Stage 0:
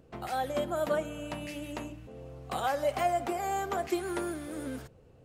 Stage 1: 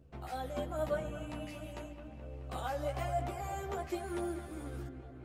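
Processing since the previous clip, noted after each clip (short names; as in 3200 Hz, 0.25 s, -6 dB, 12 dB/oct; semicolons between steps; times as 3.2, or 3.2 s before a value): low shelf 150 Hz +10.5 dB; on a send: dark delay 0.214 s, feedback 71%, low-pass 3000 Hz, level -11 dB; on the sum: chorus voices 2, 0.47 Hz, delay 14 ms, depth 2.4 ms; gain -5 dB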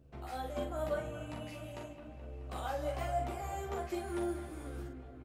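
doubler 43 ms -5.5 dB; gain -1.5 dB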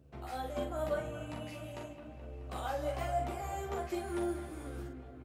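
HPF 51 Hz; gain +1 dB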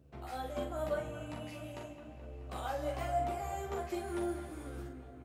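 resonator 100 Hz, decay 1.9 s, mix 60%; gain +6.5 dB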